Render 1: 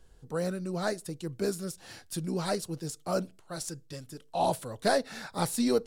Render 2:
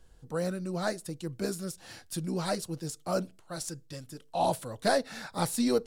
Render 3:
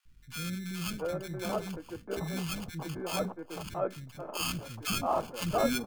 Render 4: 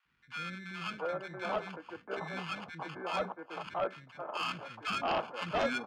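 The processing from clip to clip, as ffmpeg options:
ffmpeg -i in.wav -af "bandreject=frequency=410:width=12" out.wav
ffmpeg -i in.wav -filter_complex "[0:a]acrusher=samples=23:mix=1:aa=0.000001,acrossover=split=270|1400[link_01][link_02][link_03];[link_01]adelay=50[link_04];[link_02]adelay=680[link_05];[link_04][link_05][link_03]amix=inputs=3:normalize=0" out.wav
ffmpeg -i in.wav -filter_complex "[0:a]highpass=160,lowpass=2100,acrossover=split=690[link_01][link_02];[link_02]aeval=exprs='0.0891*sin(PI/2*3.16*val(0)/0.0891)':channel_layout=same[link_03];[link_01][link_03]amix=inputs=2:normalize=0,volume=-7.5dB" out.wav

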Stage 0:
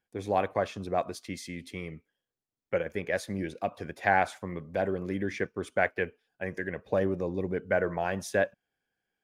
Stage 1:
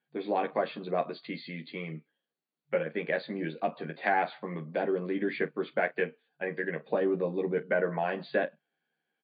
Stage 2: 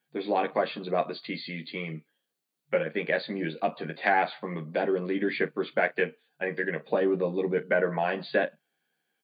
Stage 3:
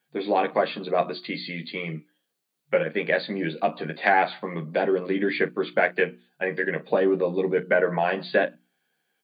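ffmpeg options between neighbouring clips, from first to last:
ffmpeg -i in.wav -filter_complex "[0:a]afftfilt=real='re*between(b*sr/4096,140,4700)':imag='im*between(b*sr/4096,140,4700)':win_size=4096:overlap=0.75,acrossover=split=350[link_01][link_02];[link_02]acompressor=threshold=-29dB:ratio=2[link_03];[link_01][link_03]amix=inputs=2:normalize=0,aecho=1:1:13|45:0.668|0.15" out.wav
ffmpeg -i in.wav -af "highshelf=frequency=3700:gain=8.5,volume=2.5dB" out.wav
ffmpeg -i in.wav -af "bandreject=frequency=60:width_type=h:width=6,bandreject=frequency=120:width_type=h:width=6,bandreject=frequency=180:width_type=h:width=6,bandreject=frequency=240:width_type=h:width=6,bandreject=frequency=300:width_type=h:width=6,bandreject=frequency=360:width_type=h:width=6,volume=4dB" out.wav

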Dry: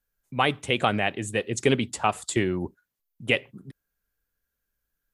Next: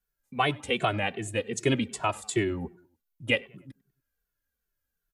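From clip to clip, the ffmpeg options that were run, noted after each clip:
ffmpeg -i in.wav -filter_complex "[0:a]asplit=2[link_01][link_02];[link_02]adelay=97,lowpass=frequency=2700:poles=1,volume=-22.5dB,asplit=2[link_03][link_04];[link_04]adelay=97,lowpass=frequency=2700:poles=1,volume=0.47,asplit=2[link_05][link_06];[link_06]adelay=97,lowpass=frequency=2700:poles=1,volume=0.47[link_07];[link_01][link_03][link_05][link_07]amix=inputs=4:normalize=0,asplit=2[link_08][link_09];[link_09]adelay=2.2,afreqshift=-2.6[link_10];[link_08][link_10]amix=inputs=2:normalize=1" out.wav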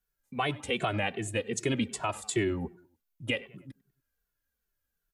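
ffmpeg -i in.wav -af "alimiter=limit=-18dB:level=0:latency=1:release=81" out.wav

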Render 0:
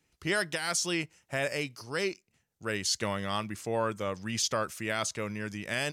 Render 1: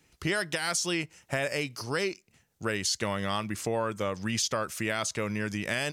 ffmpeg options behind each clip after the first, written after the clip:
ffmpeg -i in.wav -af "acompressor=threshold=-37dB:ratio=3,volume=8.5dB" out.wav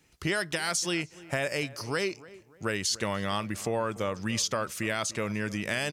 ffmpeg -i in.wav -filter_complex "[0:a]asplit=2[link_01][link_02];[link_02]adelay=292,lowpass=frequency=1800:poles=1,volume=-18.5dB,asplit=2[link_03][link_04];[link_04]adelay=292,lowpass=frequency=1800:poles=1,volume=0.4,asplit=2[link_05][link_06];[link_06]adelay=292,lowpass=frequency=1800:poles=1,volume=0.4[link_07];[link_01][link_03][link_05][link_07]amix=inputs=4:normalize=0" out.wav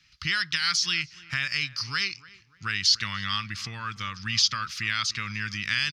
ffmpeg -i in.wav -af "firequalizer=gain_entry='entry(120,0);entry(370,-20);entry(580,-27);entry(1200,3);entry(4900,12);entry(8000,-13)':delay=0.05:min_phase=1" out.wav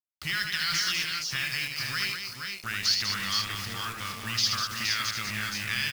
ffmpeg -i in.wav -filter_complex "[0:a]acrusher=bits=5:mix=0:aa=0.000001,asplit=2[link_01][link_02];[link_02]aecho=0:1:77|196|376|469|500:0.531|0.473|0.141|0.562|0.282[link_03];[link_01][link_03]amix=inputs=2:normalize=0,volume=-4.5dB" out.wav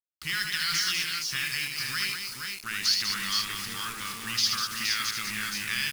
ffmpeg -i in.wav -af "acrusher=bits=6:mix=0:aa=0.000001,equalizer=frequency=100:width_type=o:width=0.67:gain=-10,equalizer=frequency=630:width_type=o:width=0.67:gain=-10,equalizer=frequency=10000:width_type=o:width=0.67:gain=5" out.wav

